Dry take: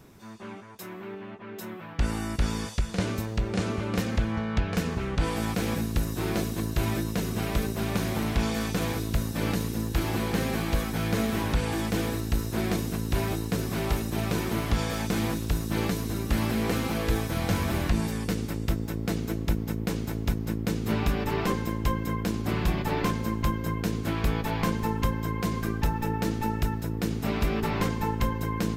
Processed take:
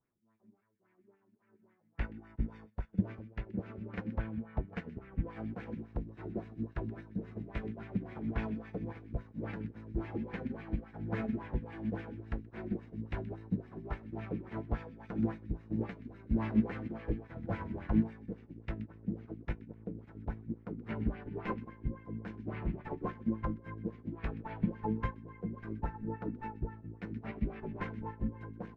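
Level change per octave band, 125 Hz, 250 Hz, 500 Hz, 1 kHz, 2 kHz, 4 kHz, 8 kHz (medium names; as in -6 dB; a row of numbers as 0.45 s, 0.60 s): -11.5 dB, -8.5 dB, -12.0 dB, -13.0 dB, -14.0 dB, under -25 dB, under -40 dB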